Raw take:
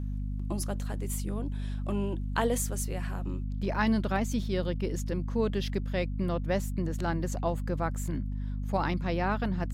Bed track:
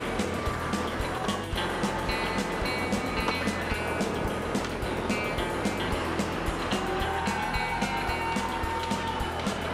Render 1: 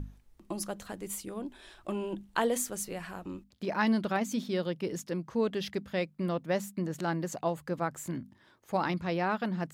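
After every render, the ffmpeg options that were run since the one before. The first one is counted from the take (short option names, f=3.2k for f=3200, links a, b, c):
-af "bandreject=f=50:t=h:w=6,bandreject=f=100:t=h:w=6,bandreject=f=150:t=h:w=6,bandreject=f=200:t=h:w=6,bandreject=f=250:t=h:w=6"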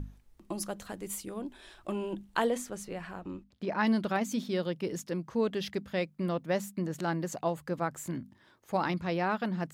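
-filter_complex "[0:a]asplit=3[a][b][c];[a]afade=t=out:st=2.49:d=0.02[d];[b]aemphasis=mode=reproduction:type=50kf,afade=t=in:st=2.49:d=0.02,afade=t=out:st=3.83:d=0.02[e];[c]afade=t=in:st=3.83:d=0.02[f];[d][e][f]amix=inputs=3:normalize=0"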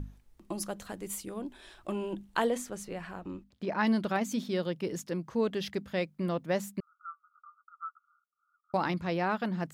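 -filter_complex "[0:a]asettb=1/sr,asplit=3[a][b][c];[a]atrim=end=6.804[d];[b]atrim=start=6.8:end=8.74,asetpts=PTS-STARTPTS,afade=t=in:d=0.004:c=qsin,afade=t=out:st=1.936:d=0.004:c=qsin,asuperpass=centerf=1300:order=20:qfactor=4.8[e];[c]atrim=start=8.736[f];[d][e]acrossfade=d=0.004:c1=hsin:c2=qsin[g];[g][f]acrossfade=d=0.004:c1=qsin:c2=hsin"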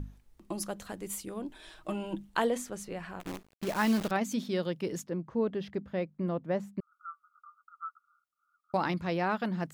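-filter_complex "[0:a]asettb=1/sr,asplit=3[a][b][c];[a]atrim=end=1.484[d];[b]atrim=start=1.48:end=2.29,asetpts=PTS-STARTPTS,afade=t=in:d=0.004:c=qsin,afade=t=out:st=0.806:d=0.004:c=qsin,aecho=1:1:6.4:0.65,atrim=end_sample=35721[e];[c]atrim=start=2.286[f];[d][e]acrossfade=d=0.004:c1=hsin:c2=qsin[g];[g][f]acrossfade=d=0.004:c1=qsin:c2=hsin,asettb=1/sr,asplit=3[h][i][j];[h]atrim=end=3.204[k];[i]atrim=start=3.2:end=4.11,asetpts=PTS-STARTPTS,afade=t=in:d=0.004:c=qsin,afade=t=out:st=0.906:d=0.004:c=qsin,acrusher=bits=7:dc=4:mix=0:aa=0.000001[l];[j]atrim=start=4.106[m];[k][l]acrossfade=d=0.004:c1=hsin:c2=qsin[n];[n][m]acrossfade=d=0.004:c1=qsin:c2=hsin,asettb=1/sr,asplit=3[o][p][q];[o]atrim=end=5.064[r];[p]atrim=start=5.06:end=6.92,asetpts=PTS-STARTPTS,afade=t=in:d=0.004:c=qsin,afade=t=out:st=1.856:d=0.004:c=qsin,lowpass=f=1k:p=1[s];[q]atrim=start=6.916[t];[r][s]acrossfade=d=0.004:c1=hsin:c2=qsin[u];[u][t]acrossfade=d=0.004:c1=qsin:c2=hsin"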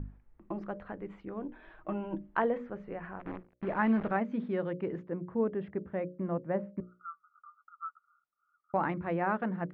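-af "lowpass=f=2k:w=0.5412,lowpass=f=2k:w=1.3066,bandreject=f=60:t=h:w=6,bandreject=f=120:t=h:w=6,bandreject=f=180:t=h:w=6,bandreject=f=240:t=h:w=6,bandreject=f=300:t=h:w=6,bandreject=f=360:t=h:w=6,bandreject=f=420:t=h:w=6,bandreject=f=480:t=h:w=6,bandreject=f=540:t=h:w=6,bandreject=f=600:t=h:w=6"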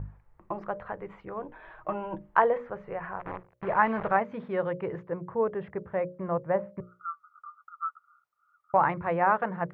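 -af "equalizer=f=125:t=o:w=1:g=10,equalizer=f=250:t=o:w=1:g=-11,equalizer=f=500:t=o:w=1:g=6,equalizer=f=1k:t=o:w=1:g=9,equalizer=f=2k:t=o:w=1:g=4"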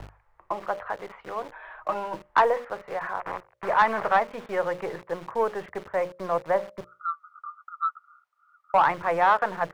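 -filter_complex "[0:a]acrossover=split=120|430|820[a][b][c][d];[b]acrusher=bits=5:dc=4:mix=0:aa=0.000001[e];[a][e][c][d]amix=inputs=4:normalize=0,asplit=2[f][g];[g]highpass=f=720:p=1,volume=13dB,asoftclip=type=tanh:threshold=-8.5dB[h];[f][h]amix=inputs=2:normalize=0,lowpass=f=2.7k:p=1,volume=-6dB"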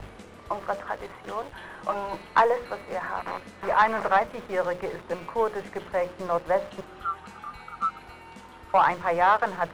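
-filter_complex "[1:a]volume=-17dB[a];[0:a][a]amix=inputs=2:normalize=0"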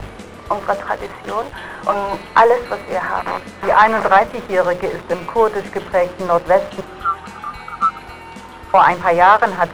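-af "volume=11dB,alimiter=limit=-1dB:level=0:latency=1"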